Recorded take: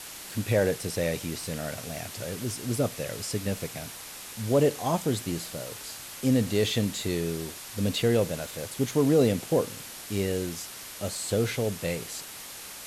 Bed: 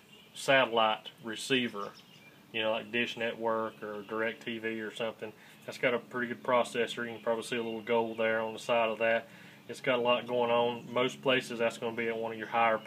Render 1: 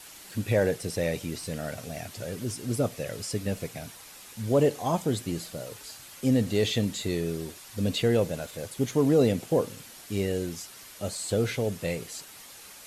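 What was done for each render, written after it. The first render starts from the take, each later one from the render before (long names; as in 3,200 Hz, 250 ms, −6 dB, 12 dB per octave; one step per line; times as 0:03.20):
broadband denoise 7 dB, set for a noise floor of −42 dBFS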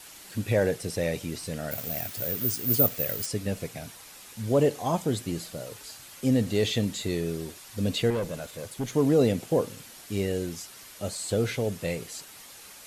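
0:01.71–0:03.26: bad sample-rate conversion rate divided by 3×, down none, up zero stuff
0:08.10–0:08.94: tube saturation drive 24 dB, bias 0.3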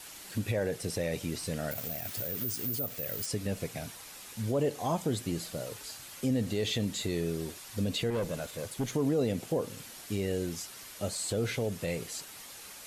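downward compressor 1.5 to 1, threshold −30 dBFS, peak gain reduction 6 dB
brickwall limiter −21 dBFS, peak gain reduction 9.5 dB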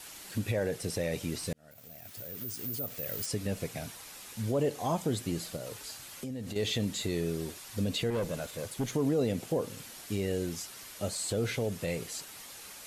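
0:01.53–0:03.18: fade in
0:05.56–0:06.56: downward compressor, threshold −35 dBFS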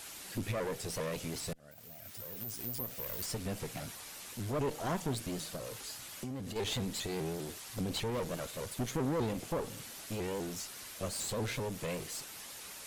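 asymmetric clip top −42 dBFS
pitch modulation by a square or saw wave saw up 5 Hz, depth 160 cents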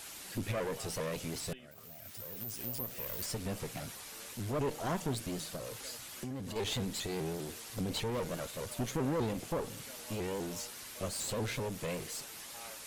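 mix in bed −25.5 dB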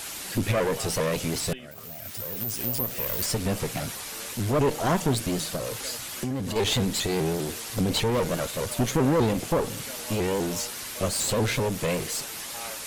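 level +11 dB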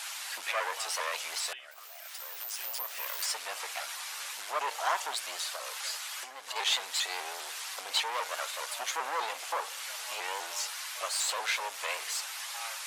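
high-pass filter 820 Hz 24 dB per octave
high-shelf EQ 9,300 Hz −11 dB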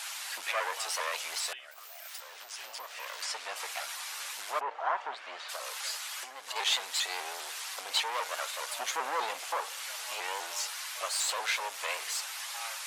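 0:02.20–0:03.56: high-frequency loss of the air 55 metres
0:04.59–0:05.48: low-pass filter 1,200 Hz → 2,700 Hz
0:08.67–0:09.39: low-shelf EQ 230 Hz +11.5 dB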